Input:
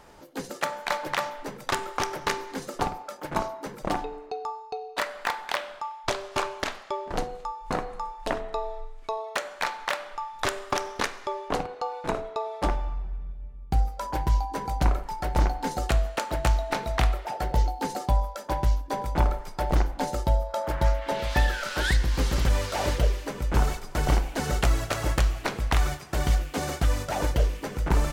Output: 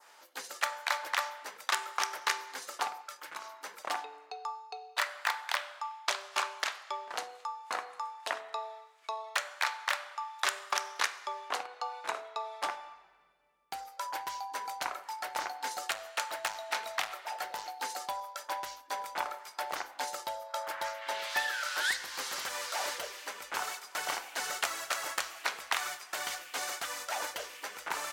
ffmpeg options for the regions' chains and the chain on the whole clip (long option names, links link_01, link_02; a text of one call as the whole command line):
ffmpeg -i in.wav -filter_complex "[0:a]asettb=1/sr,asplit=3[link_01][link_02][link_03];[link_01]atrim=end=3.014[link_04];[link_02]atrim=start=3.01:end=3.64,asetpts=PTS-STARTPTS,afade=type=in:duration=0.004:curve=qsin,afade=type=out:start_time=0.626:duration=0.004:curve=qsin,equalizer=frequency=700:width_type=o:width=0.88:gain=-8,acompressor=threshold=-34dB:ratio=2.5:attack=3.2:release=140:knee=1:detection=peak[link_05];[link_03]atrim=start=3.636[link_06];[link_04][link_05]acrossfade=duration=0.004:curve1=hsin:curve2=qsin[link_07];[link_07][link_06]acrossfade=duration=0.004:curve1=qsin:curve2=hsin,asettb=1/sr,asplit=3[link_08][link_09][link_10];[link_08]atrim=end=15.774[link_11];[link_09]atrim=start=15.77:end=17.91,asetpts=PTS-STARTPTS,afade=type=in:duration=0.004:curve=qsin,afade=type=out:start_time=2.136:duration=0.004:curve=qsin,volume=18.5dB,asoftclip=hard,volume=-18.5dB,aecho=1:1:938:0.0944,atrim=end_sample=94374[link_12];[link_10]atrim=start=17.906[link_13];[link_11][link_12]acrossfade=duration=0.004:curve1=hsin:curve2=qsin[link_14];[link_14][link_13]acrossfade=duration=0.004:curve1=qsin:curve2=hsin,highpass=1100,adynamicequalizer=threshold=0.00631:dfrequency=2800:dqfactor=1.1:tfrequency=2800:tqfactor=1.1:attack=5:release=100:ratio=0.375:range=2:mode=cutabove:tftype=bell" out.wav